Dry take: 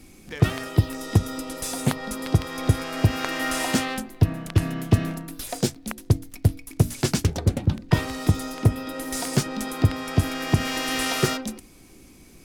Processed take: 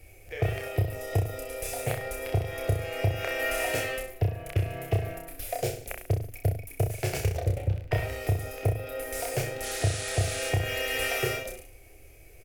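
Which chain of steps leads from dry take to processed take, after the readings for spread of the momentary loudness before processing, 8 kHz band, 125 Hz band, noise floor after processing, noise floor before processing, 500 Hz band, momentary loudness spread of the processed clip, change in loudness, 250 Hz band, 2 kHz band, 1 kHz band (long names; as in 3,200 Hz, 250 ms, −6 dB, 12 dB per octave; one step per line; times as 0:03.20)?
8 LU, −5.0 dB, −6.0 dB, −51 dBFS, −49 dBFS, 0.0 dB, 6 LU, −5.5 dB, −14.5 dB, −2.0 dB, −5.5 dB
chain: drawn EQ curve 110 Hz 0 dB, 210 Hz −29 dB, 440 Hz −1 dB, 680 Hz +2 dB, 990 Hz −15 dB, 2,400 Hz 0 dB, 3,700 Hz −13 dB, 8,500 Hz −9 dB, 15,000 Hz +1 dB
downward compressor, threshold −23 dBFS, peak gain reduction 10 dB
sound drawn into the spectrogram noise, 0:09.62–0:10.50, 1,200–11,000 Hz −39 dBFS
reverse bouncing-ball delay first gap 30 ms, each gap 1.1×, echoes 5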